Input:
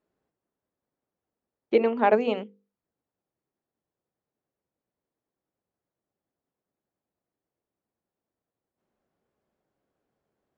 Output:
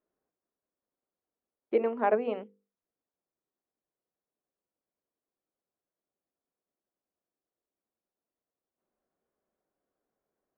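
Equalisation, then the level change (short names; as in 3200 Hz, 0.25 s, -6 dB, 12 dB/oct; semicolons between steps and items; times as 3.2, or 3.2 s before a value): LPF 1800 Hz 12 dB/oct; bell 110 Hz -10.5 dB 1.6 oct; notch 860 Hz, Q 15; -4.0 dB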